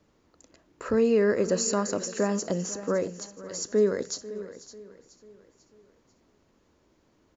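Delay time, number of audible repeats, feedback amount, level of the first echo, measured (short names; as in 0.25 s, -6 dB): 0.493 s, 5, no steady repeat, -18.0 dB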